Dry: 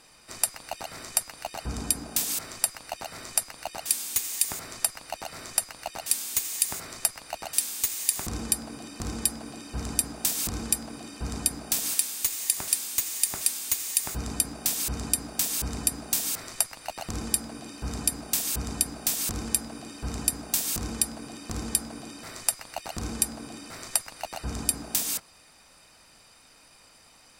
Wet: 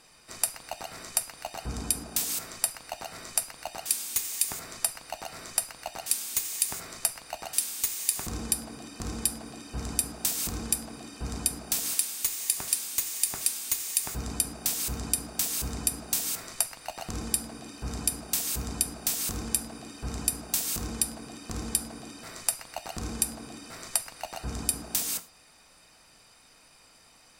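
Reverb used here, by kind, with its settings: gated-style reverb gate 130 ms falling, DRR 11 dB; trim -2 dB

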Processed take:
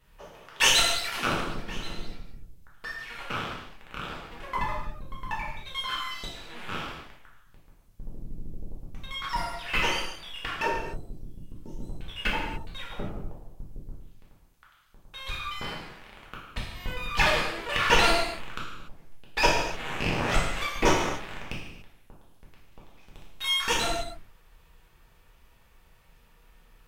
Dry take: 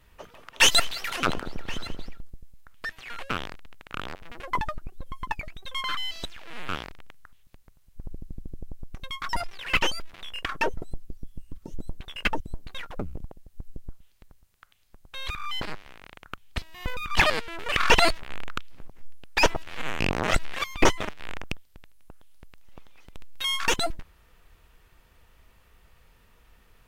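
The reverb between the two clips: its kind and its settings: gated-style reverb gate 320 ms falling, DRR -5 dB; trim -6.5 dB

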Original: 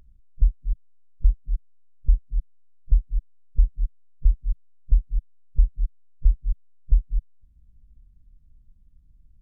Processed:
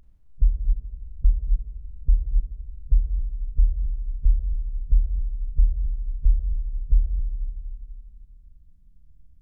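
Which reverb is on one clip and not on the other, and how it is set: Schroeder reverb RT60 2.7 s, combs from 29 ms, DRR 2 dB; trim -1 dB

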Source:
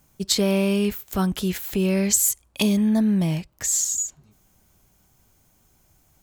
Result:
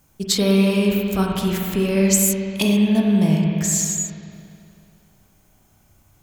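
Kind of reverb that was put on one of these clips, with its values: spring tank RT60 2.5 s, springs 31/39 ms, chirp 70 ms, DRR -1 dB; trim +1 dB

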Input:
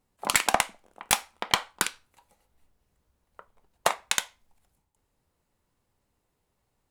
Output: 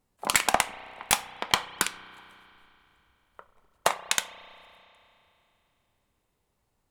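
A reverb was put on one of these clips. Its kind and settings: spring tank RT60 3 s, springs 32 ms, chirp 75 ms, DRR 14 dB

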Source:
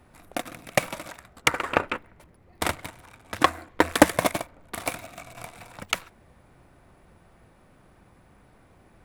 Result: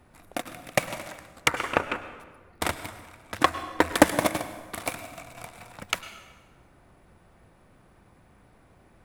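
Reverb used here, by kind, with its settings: plate-style reverb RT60 1.4 s, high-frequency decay 0.75×, pre-delay 90 ms, DRR 12 dB; trim -1.5 dB

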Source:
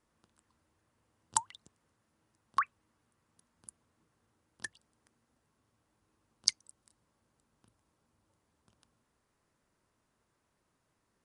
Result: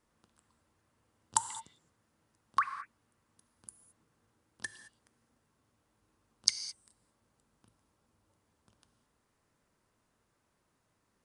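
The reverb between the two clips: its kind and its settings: gated-style reverb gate 240 ms flat, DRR 9.5 dB; trim +1 dB

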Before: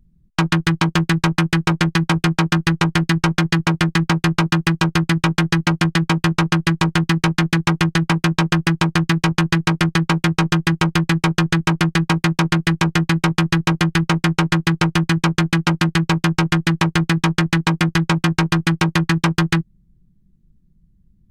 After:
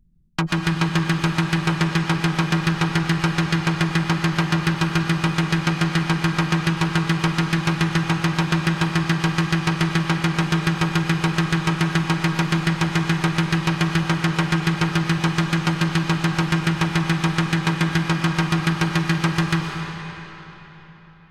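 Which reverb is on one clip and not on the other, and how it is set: algorithmic reverb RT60 4 s, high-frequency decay 0.8×, pre-delay 80 ms, DRR 2 dB; trim -5 dB

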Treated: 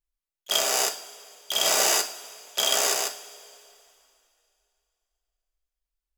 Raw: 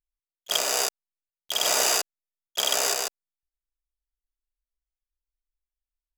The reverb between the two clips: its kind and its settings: two-slope reverb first 0.37 s, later 2.7 s, from -18 dB, DRR 4.5 dB

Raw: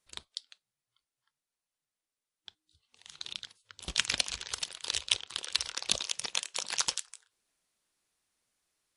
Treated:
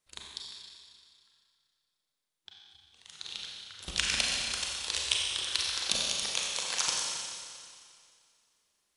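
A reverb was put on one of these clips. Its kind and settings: Schroeder reverb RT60 2.2 s, combs from 30 ms, DRR -2.5 dB; trim -2 dB

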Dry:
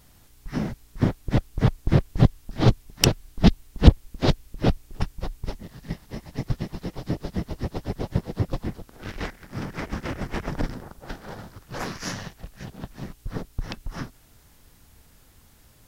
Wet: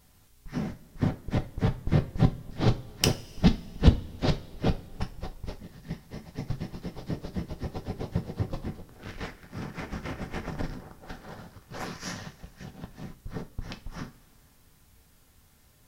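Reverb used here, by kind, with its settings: two-slope reverb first 0.28 s, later 2.5 s, from -21 dB, DRR 5 dB; trim -6 dB

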